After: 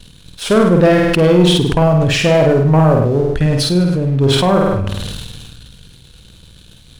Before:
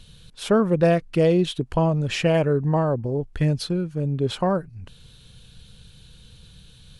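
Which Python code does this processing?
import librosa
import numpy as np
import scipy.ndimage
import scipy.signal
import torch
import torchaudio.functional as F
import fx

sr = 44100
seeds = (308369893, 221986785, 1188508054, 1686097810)

y = fx.leveller(x, sr, passes=2)
y = fx.room_flutter(y, sr, wall_m=8.7, rt60_s=0.64)
y = fx.sustainer(y, sr, db_per_s=26.0)
y = y * 10.0 ** (1.0 / 20.0)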